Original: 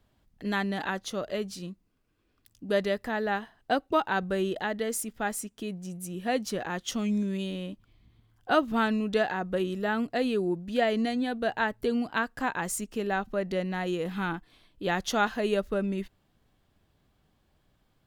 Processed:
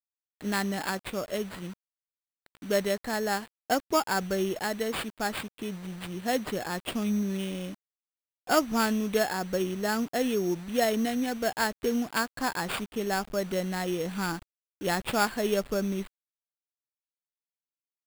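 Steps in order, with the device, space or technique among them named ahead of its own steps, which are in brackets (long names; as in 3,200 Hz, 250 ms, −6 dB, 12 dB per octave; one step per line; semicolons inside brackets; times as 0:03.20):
early 8-bit sampler (sample-rate reduction 6,000 Hz, jitter 0%; bit reduction 8 bits)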